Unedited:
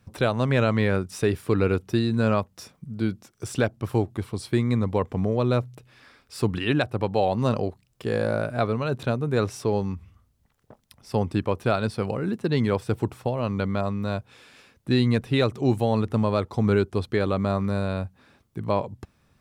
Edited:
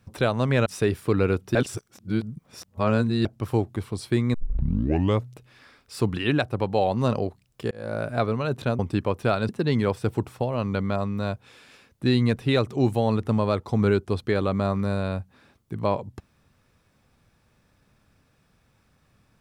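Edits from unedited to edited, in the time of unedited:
0.66–1.07 s: delete
1.96–3.66 s: reverse
4.75 s: tape start 0.92 s
8.12–8.49 s: fade in
9.20–11.20 s: delete
11.90–12.34 s: delete

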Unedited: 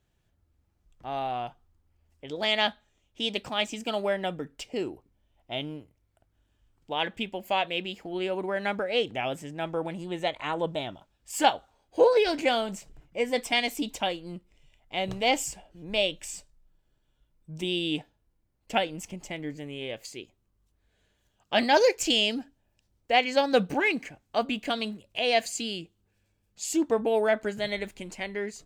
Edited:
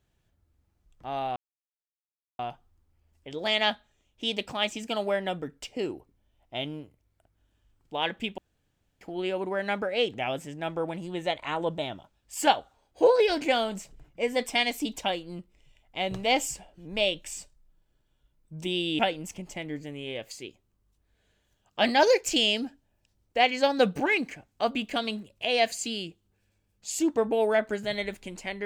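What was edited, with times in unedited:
1.36 s: insert silence 1.03 s
7.35–7.98 s: room tone
17.96–18.73 s: delete

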